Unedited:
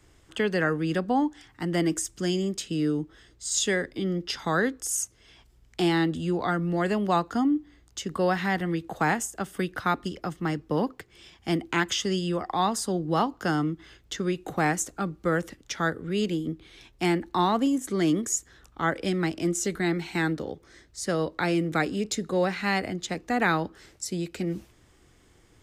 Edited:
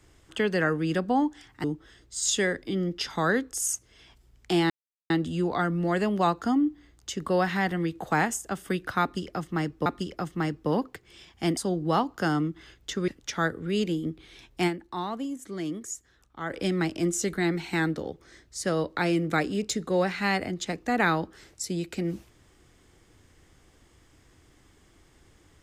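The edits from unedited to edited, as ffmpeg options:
-filter_complex "[0:a]asplit=8[a][b][c][d][e][f][g][h];[a]atrim=end=1.642[i];[b]atrim=start=2.928:end=5.99,asetpts=PTS-STARTPTS,afade=t=out:st=3.058:d=0.004:c=hsin,apad=pad_dur=0.4[j];[c]atrim=start=5.99:end=10.752,asetpts=PTS-STARTPTS,afade=t=in:d=0.004:c=hsin[k];[d]atrim=start=9.908:end=11.622[l];[e]atrim=start=12.798:end=14.312[m];[f]atrim=start=15.498:end=17.32,asetpts=PTS-STARTPTS,afade=t=out:st=1.592:d=0.23:c=exp:silence=0.354813[n];[g]atrim=start=17.32:end=18.71,asetpts=PTS-STARTPTS,volume=-9dB[o];[h]atrim=start=18.71,asetpts=PTS-STARTPTS,afade=t=in:d=0.23:c=exp:silence=0.354813[p];[j][k]concat=n=2:v=0:a=1[q];[i][q]acrossfade=d=0.004:c1=hsin:c2=hsin[r];[r][l]acrossfade=d=0.004:c1=hsin:c2=hsin[s];[s][m]acrossfade=d=0.004:c1=hsin:c2=hsin[t];[n][o][p]concat=n=3:v=0:a=1[u];[t][u]acrossfade=d=0.004:c1=hsin:c2=hsin"

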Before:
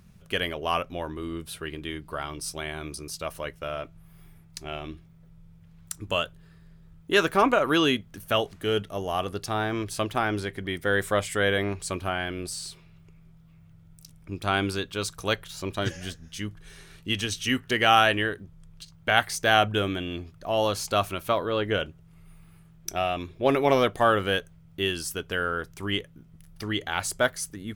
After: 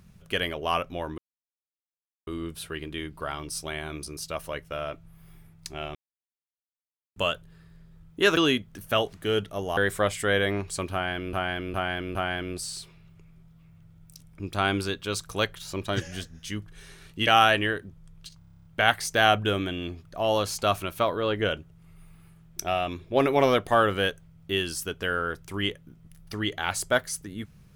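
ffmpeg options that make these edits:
-filter_complex "[0:a]asplit=19[a][b][c][d][e][f][g][h][i][j][k][l][m][n][o][p][q][r][s];[a]atrim=end=1.18,asetpts=PTS-STARTPTS,afade=t=out:st=1.176:d=0.004:c=hsin,apad=pad_dur=1.09[t];[b]atrim=start=1.18:end=4.86,asetpts=PTS-STARTPTS,afade=t=in:d=0.004:c=hsin,afade=t=out:st=3.676:d=0.004:c=hsin[u];[c]atrim=start=4.86:end=6.07,asetpts=PTS-STARTPTS,volume=0[v];[d]atrim=start=6.07:end=7.282,asetpts=PTS-STARTPTS,afade=t=in:d=0.004:c=hsin[w];[e]atrim=start=7.758:end=9.162[x];[f]atrim=start=10.888:end=12.452[y];[g]atrim=start=12.038:end=12.452[z];[h]atrim=start=12.038:end=12.452[aa];[i]atrim=start=12.038:end=17.162[ab];[j]atrim=start=17.828:end=18.972[ac];[k]atrim=start=18.938:end=18.972[ad];[l]atrim=start=18.938:end=18.972[ae];[m]atrim=start=18.938:end=18.972[af];[n]atrim=start=18.938:end=18.972[ag];[o]atrim=start=18.938:end=18.972[ah];[p]atrim=start=18.938:end=18.972[ai];[q]atrim=start=18.938:end=18.972[aj];[r]atrim=start=18.938:end=18.972[ak];[s]atrim=start=18.938[al];[t][u][v][w]concat=n=4:v=0:a=1[am];[am][x]acrossfade=d=0.004:c1=hsin:c2=hsin[an];[an][y]acrossfade=d=0.004:c1=hsin:c2=hsin[ao];[ao][z]acrossfade=d=0.004:c1=hsin:c2=hsin[ap];[ap][aa]acrossfade=d=0.004:c1=hsin:c2=hsin[aq];[aq][ab]acrossfade=d=0.004:c1=hsin:c2=hsin[ar];[ar][ac]acrossfade=d=0.004:c1=hsin:c2=hsin[as];[as][ad]acrossfade=d=0.004:c1=hsin:c2=hsin[at];[at][ae]acrossfade=d=0.004:c1=hsin:c2=hsin[au];[au][af]acrossfade=d=0.004:c1=hsin:c2=hsin[av];[av][ag]acrossfade=d=0.004:c1=hsin:c2=hsin[aw];[aw][ah]acrossfade=d=0.004:c1=hsin:c2=hsin[ax];[ax][ai]acrossfade=d=0.004:c1=hsin:c2=hsin[ay];[ay][aj]acrossfade=d=0.004:c1=hsin:c2=hsin[az];[az][ak]acrossfade=d=0.004:c1=hsin:c2=hsin[ba];[ba][al]acrossfade=d=0.004:c1=hsin:c2=hsin"

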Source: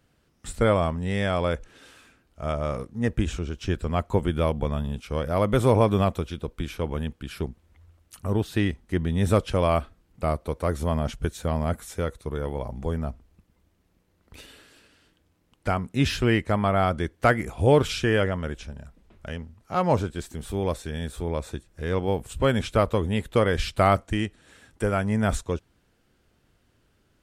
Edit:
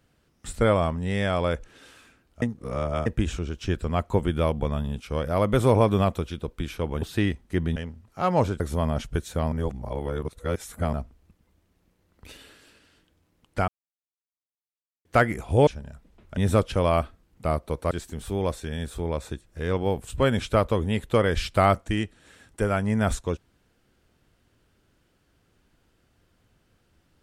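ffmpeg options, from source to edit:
-filter_complex "[0:a]asplit=13[a][b][c][d][e][f][g][h][i][j][k][l][m];[a]atrim=end=2.422[n];[b]atrim=start=2.418:end=3.062,asetpts=PTS-STARTPTS,areverse[o];[c]atrim=start=3.058:end=7.022[p];[d]atrim=start=8.408:end=9.152[q];[e]atrim=start=19.288:end=20.132[r];[f]atrim=start=10.688:end=11.612[s];[g]atrim=start=11.608:end=13.022,asetpts=PTS-STARTPTS,areverse[t];[h]atrim=start=13.018:end=15.77,asetpts=PTS-STARTPTS,afade=t=out:st=2.748:d=0.004:c=hsin[u];[i]atrim=start=15.77:end=17.14,asetpts=PTS-STARTPTS,volume=0[v];[j]atrim=start=17.14:end=17.762,asetpts=PTS-STARTPTS,afade=t=in:d=0.004:c=hsin[w];[k]atrim=start=18.588:end=19.292[x];[l]atrim=start=9.148:end=10.692[y];[m]atrim=start=20.128[z];[n][o]acrossfade=d=0.004:c1=hsin:c2=hsin[aa];[aa][p]acrossfade=d=0.004:c1=hsin:c2=hsin[ab];[ab][q]acrossfade=d=0.004:c1=hsin:c2=hsin[ac];[ac][r]acrossfade=d=0.004:c1=hsin:c2=hsin[ad];[ad][s]acrossfade=d=0.004:c1=hsin:c2=hsin[ae];[ae][t]acrossfade=d=0.004:c1=hsin:c2=hsin[af];[u][v][w]concat=n=3:v=0:a=1[ag];[af][ag]acrossfade=d=0.004:c1=hsin:c2=hsin[ah];[ah][x]acrossfade=d=0.004:c1=hsin:c2=hsin[ai];[ai][y]acrossfade=d=0.004:c1=hsin:c2=hsin[aj];[aj][z]acrossfade=d=0.004:c1=hsin:c2=hsin"

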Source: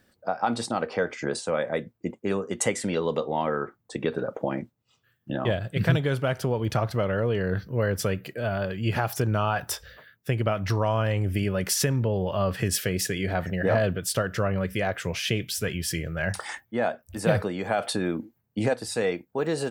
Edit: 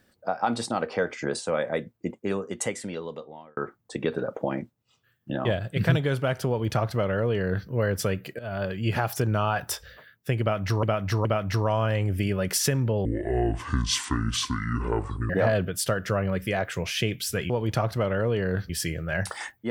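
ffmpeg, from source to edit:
-filter_complex "[0:a]asplit=9[a][b][c][d][e][f][g][h][i];[a]atrim=end=3.57,asetpts=PTS-STARTPTS,afade=t=out:st=2.12:d=1.45[j];[b]atrim=start=3.57:end=8.39,asetpts=PTS-STARTPTS,afade=t=in:d=0.004:c=hsin,afade=t=out:st=4.816:d=0.004:c=hsin:silence=0.188365[k];[c]atrim=start=8.39:end=10.832,asetpts=PTS-STARTPTS,afade=t=in:d=0.25:silence=0.188365[l];[d]atrim=start=10.408:end=10.832[m];[e]atrim=start=10.408:end=12.214[n];[f]atrim=start=12.21:end=13.58,asetpts=PTS-STARTPTS,asetrate=26901,aresample=44100,atrim=end_sample=99044,asetpts=PTS-STARTPTS[o];[g]atrim=start=13.576:end=15.782[p];[h]atrim=start=6.478:end=7.682[q];[i]atrim=start=15.778[r];[j][k][l]concat=n=3:v=0:a=1[s];[s][m]acrossfade=d=0.004:c1=hsin:c2=hsin[t];[t][n]acrossfade=d=0.004:c1=hsin:c2=hsin[u];[u][o]acrossfade=d=0.004:c1=hsin:c2=hsin[v];[v][p]acrossfade=d=0.004:c1=hsin:c2=hsin[w];[w][q]acrossfade=d=0.004:c1=hsin:c2=hsin[x];[x][r]acrossfade=d=0.004:c1=hsin:c2=hsin"

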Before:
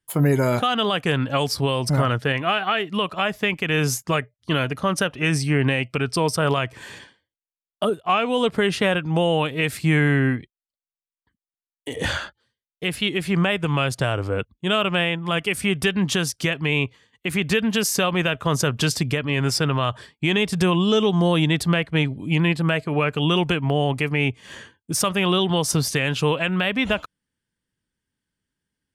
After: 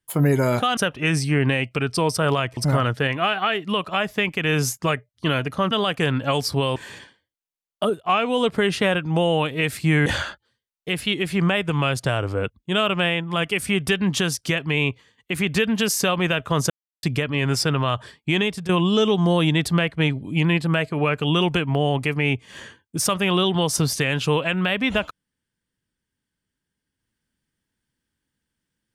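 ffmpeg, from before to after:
-filter_complex "[0:a]asplit=9[a][b][c][d][e][f][g][h][i];[a]atrim=end=0.772[j];[b]atrim=start=4.958:end=6.762[k];[c]atrim=start=1.818:end=4.962[l];[d]atrim=start=0.768:end=1.822[m];[e]atrim=start=6.758:end=10.062[n];[f]atrim=start=12.008:end=18.65,asetpts=PTS-STARTPTS,afade=t=out:st=6.638:d=0.004:c=hsin[o];[g]atrim=start=18.65:end=18.98,asetpts=PTS-STARTPTS,volume=0[p];[h]atrim=start=18.98:end=20.64,asetpts=PTS-STARTPTS,afade=t=in:d=0.004:c=hsin,afade=t=out:st=1.35:d=0.31:silence=0.16788[q];[i]atrim=start=20.64,asetpts=PTS-STARTPTS,afade=t=in:d=0.004:c=hsin:silence=0.16788[r];[j][k]acrossfade=d=0.004:c1=hsin:c2=hsin[s];[s][l]acrossfade=d=0.004:c1=hsin:c2=hsin[t];[t][m]acrossfade=d=0.004:c1=hsin:c2=hsin[u];[u][n]acrossfade=d=0.004:c1=hsin:c2=hsin[v];[o][p][q][r]concat=n=4:v=0:a=1[w];[v][w]acrossfade=d=0.004:c1=hsin:c2=hsin"

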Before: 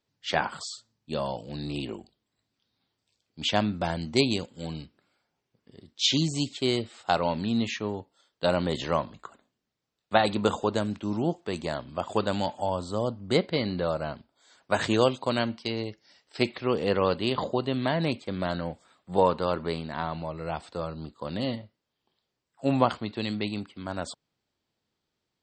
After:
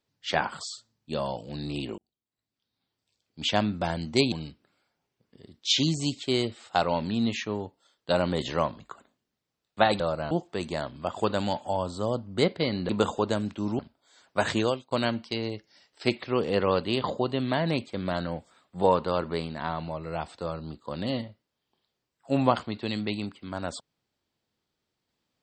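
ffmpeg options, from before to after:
-filter_complex "[0:a]asplit=8[a][b][c][d][e][f][g][h];[a]atrim=end=1.98,asetpts=PTS-STARTPTS,afade=t=out:st=1.976:d=0.004:c=hsin[i];[b]atrim=start=1.98:end=4.322,asetpts=PTS-STARTPTS,afade=t=in:d=1.46[j];[c]atrim=start=4.658:end=10.342[k];[d]atrim=start=13.818:end=14.132[l];[e]atrim=start=11.238:end=13.822[m];[f]atrim=start=10.338:end=11.242[n];[g]atrim=start=14.128:end=15.25,asetpts=PTS-STARTPTS,afade=t=out:st=0.752:d=0.37[o];[h]atrim=start=15.25,asetpts=PTS-STARTPTS,afade=t=in:d=0.004:c=hsin[p];[i][j]concat=n=2:v=0:a=1[q];[q][k]acrossfade=d=0.004:c1=hsin:c2=hsin[r];[r][l]acrossfade=d=0.004:c1=hsin:c2=hsin[s];[s][m]acrossfade=d=0.004:c1=hsin:c2=hsin[t];[t][n]acrossfade=d=0.004:c1=hsin:c2=hsin[u];[o][p]concat=n=2:v=0:a=1[v];[u][v]acrossfade=d=0.004:c1=hsin:c2=hsin"

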